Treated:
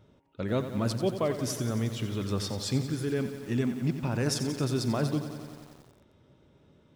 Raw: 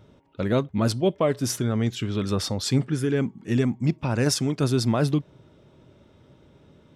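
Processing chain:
feedback echo at a low word length 90 ms, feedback 80%, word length 7 bits, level −10.5 dB
level −6.5 dB

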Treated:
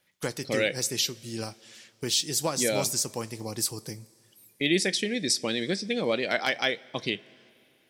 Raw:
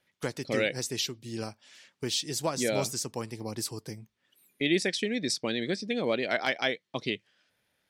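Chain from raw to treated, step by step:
high-shelf EQ 5,600 Hz +8.5 dB
coupled-rooms reverb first 0.21 s, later 2.9 s, from −20 dB, DRR 13.5 dB
level +1 dB

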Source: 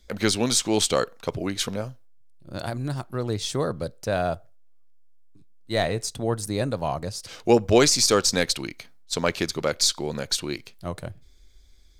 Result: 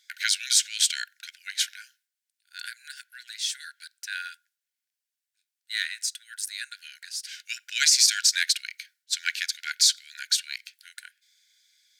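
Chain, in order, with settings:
linear-phase brick-wall high-pass 1,400 Hz
level +2 dB

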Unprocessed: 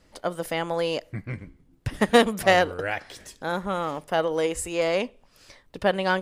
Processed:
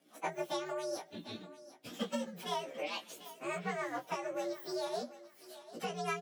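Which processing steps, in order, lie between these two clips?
partials spread apart or drawn together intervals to 127%
high-pass filter 210 Hz 24 dB per octave
downward compressor 8 to 1, threshold −33 dBFS, peak gain reduction 17.5 dB
rotating-speaker cabinet horn 7 Hz
double-tracking delay 17 ms −4.5 dB
feedback echo with a high-pass in the loop 744 ms, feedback 22%, high-pass 330 Hz, level −15 dB

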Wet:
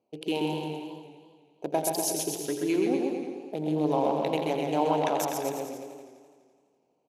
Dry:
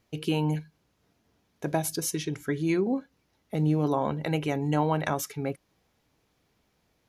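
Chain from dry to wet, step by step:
adaptive Wiener filter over 25 samples
high-pass filter 360 Hz 12 dB per octave
flat-topped bell 1,500 Hz −9 dB 1.1 octaves
bouncing-ball delay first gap 130 ms, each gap 0.9×, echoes 5
feedback echo with a swinging delay time 84 ms, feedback 73%, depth 104 cents, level −11 dB
level +2 dB

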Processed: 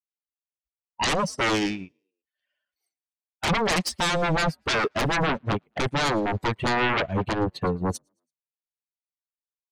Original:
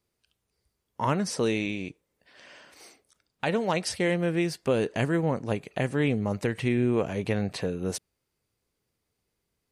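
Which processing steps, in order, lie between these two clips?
spectral dynamics exaggerated over time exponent 2
high-shelf EQ 2,700 Hz −12 dB
sine wavefolder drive 18 dB, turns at −18 dBFS
echo with shifted repeats 111 ms, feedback 49%, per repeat +52 Hz, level −24 dB
expander for the loud parts 2.5 to 1, over −35 dBFS

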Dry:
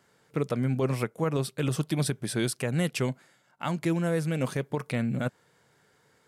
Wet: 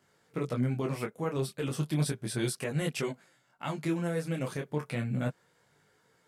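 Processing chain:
micro pitch shift up and down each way 12 cents

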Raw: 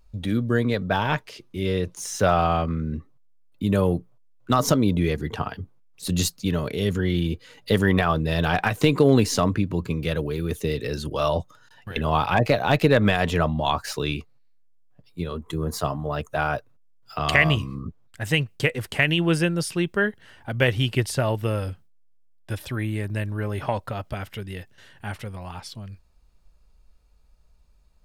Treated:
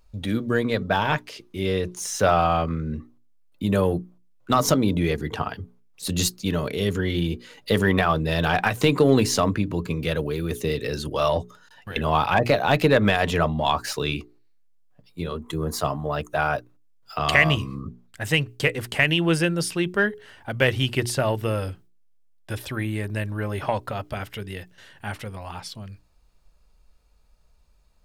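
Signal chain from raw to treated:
low-shelf EQ 190 Hz −4 dB
mains-hum notches 60/120/180/240/300/360/420 Hz
in parallel at −10.5 dB: soft clipping −19 dBFS, distortion −10 dB

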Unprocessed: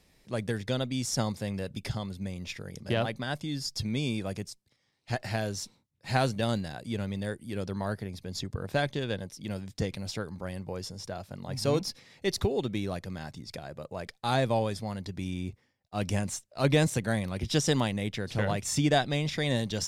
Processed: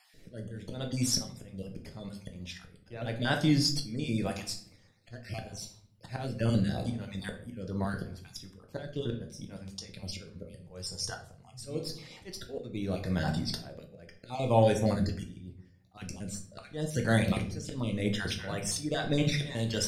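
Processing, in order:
time-frequency cells dropped at random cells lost 30%
volume swells 606 ms
0:10.53–0:11.63: octave-band graphic EQ 125/250/8,000 Hz +6/−9/+10 dB
convolution reverb RT60 0.55 s, pre-delay 6 ms, DRR 2.5 dB
rotating-speaker cabinet horn 0.8 Hz
level +8 dB

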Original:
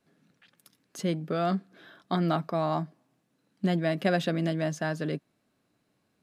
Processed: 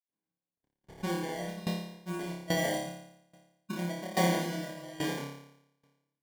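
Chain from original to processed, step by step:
Chebyshev band-stop filter 870–7,600 Hz, order 3
noise gate −58 dBFS, range −22 dB
sample-rate reduction 1,300 Hz, jitter 0%
granular cloud, pitch spread up and down by 0 semitones
on a send: flutter between parallel walls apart 4.9 metres, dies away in 1.1 s
on the sum: tremolo with a ramp in dB decaying 1.2 Hz, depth 18 dB

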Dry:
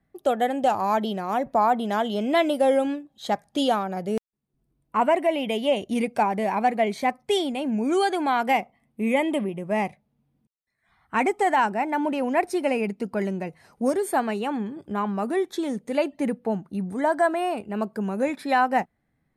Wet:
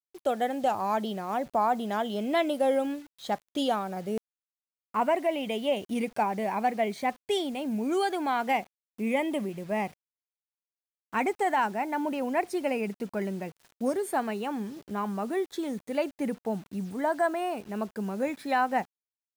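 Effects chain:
bit reduction 8 bits
level −5 dB

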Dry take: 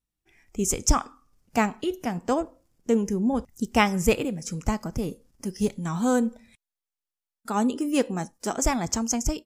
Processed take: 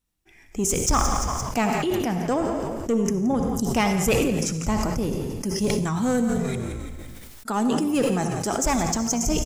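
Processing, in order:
hum removal 56.49 Hz, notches 3
in parallel at +0.5 dB: downward compressor, threshold −37 dBFS, peak gain reduction 21 dB
on the sum: soft clipping −15 dBFS, distortion −15 dB
echo with shifted repeats 172 ms, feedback 40%, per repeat −54 Hz, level −14.5 dB
on a send at −9 dB: convolution reverb RT60 0.85 s, pre-delay 52 ms
on the sum: level that may fall only so fast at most 20 dB per second

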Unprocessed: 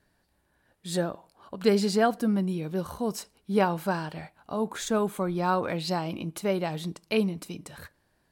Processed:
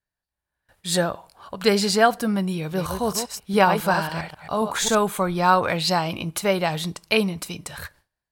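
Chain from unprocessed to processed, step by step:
0:02.59–0:04.95: delay that plays each chunk backwards 135 ms, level −7 dB
automatic gain control gain up to 8 dB
noise gate with hold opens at −48 dBFS
parametric band 280 Hz −10.5 dB 1.8 octaves
level +3.5 dB

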